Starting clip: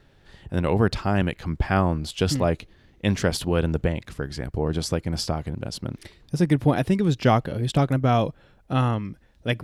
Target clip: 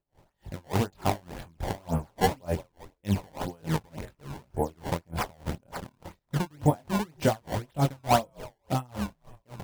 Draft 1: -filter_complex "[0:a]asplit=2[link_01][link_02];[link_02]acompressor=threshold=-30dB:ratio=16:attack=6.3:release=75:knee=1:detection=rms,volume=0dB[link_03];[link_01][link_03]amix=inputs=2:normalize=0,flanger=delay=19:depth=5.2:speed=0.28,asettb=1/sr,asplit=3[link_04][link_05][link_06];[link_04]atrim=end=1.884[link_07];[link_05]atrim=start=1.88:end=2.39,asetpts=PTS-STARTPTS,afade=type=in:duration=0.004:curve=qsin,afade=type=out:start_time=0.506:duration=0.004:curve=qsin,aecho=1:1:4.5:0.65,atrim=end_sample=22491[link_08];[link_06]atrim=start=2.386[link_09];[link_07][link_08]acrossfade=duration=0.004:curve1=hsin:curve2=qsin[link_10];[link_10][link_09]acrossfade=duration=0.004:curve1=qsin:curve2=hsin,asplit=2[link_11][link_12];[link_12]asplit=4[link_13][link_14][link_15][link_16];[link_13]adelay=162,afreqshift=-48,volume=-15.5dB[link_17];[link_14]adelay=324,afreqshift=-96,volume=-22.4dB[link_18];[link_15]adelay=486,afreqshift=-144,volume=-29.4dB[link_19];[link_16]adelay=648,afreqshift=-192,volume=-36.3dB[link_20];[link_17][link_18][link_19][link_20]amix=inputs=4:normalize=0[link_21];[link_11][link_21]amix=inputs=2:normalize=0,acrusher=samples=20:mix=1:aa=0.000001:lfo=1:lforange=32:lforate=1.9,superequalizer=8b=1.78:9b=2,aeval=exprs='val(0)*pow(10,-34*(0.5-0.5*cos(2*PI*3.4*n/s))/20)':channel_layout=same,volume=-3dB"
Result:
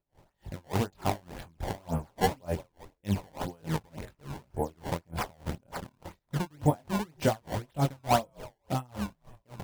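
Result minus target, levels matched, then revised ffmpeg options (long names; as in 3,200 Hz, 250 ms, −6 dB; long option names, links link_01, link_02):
downward compressor: peak gain reduction +9.5 dB
-filter_complex "[0:a]asplit=2[link_01][link_02];[link_02]acompressor=threshold=-20dB:ratio=16:attack=6.3:release=75:knee=1:detection=rms,volume=0dB[link_03];[link_01][link_03]amix=inputs=2:normalize=0,flanger=delay=19:depth=5.2:speed=0.28,asettb=1/sr,asplit=3[link_04][link_05][link_06];[link_04]atrim=end=1.884[link_07];[link_05]atrim=start=1.88:end=2.39,asetpts=PTS-STARTPTS,afade=type=in:duration=0.004:curve=qsin,afade=type=out:start_time=0.506:duration=0.004:curve=qsin,aecho=1:1:4.5:0.65,atrim=end_sample=22491[link_08];[link_06]atrim=start=2.386[link_09];[link_07][link_08]acrossfade=duration=0.004:curve1=hsin:curve2=qsin[link_10];[link_10][link_09]acrossfade=duration=0.004:curve1=qsin:curve2=hsin,asplit=2[link_11][link_12];[link_12]asplit=4[link_13][link_14][link_15][link_16];[link_13]adelay=162,afreqshift=-48,volume=-15.5dB[link_17];[link_14]adelay=324,afreqshift=-96,volume=-22.4dB[link_18];[link_15]adelay=486,afreqshift=-144,volume=-29.4dB[link_19];[link_16]adelay=648,afreqshift=-192,volume=-36.3dB[link_20];[link_17][link_18][link_19][link_20]amix=inputs=4:normalize=0[link_21];[link_11][link_21]amix=inputs=2:normalize=0,acrusher=samples=20:mix=1:aa=0.000001:lfo=1:lforange=32:lforate=1.9,superequalizer=8b=1.78:9b=2,aeval=exprs='val(0)*pow(10,-34*(0.5-0.5*cos(2*PI*3.4*n/s))/20)':channel_layout=same,volume=-3dB"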